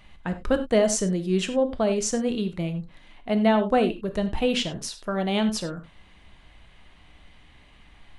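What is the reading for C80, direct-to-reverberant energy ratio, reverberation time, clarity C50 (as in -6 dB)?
16.0 dB, 8.0 dB, not exponential, 12.0 dB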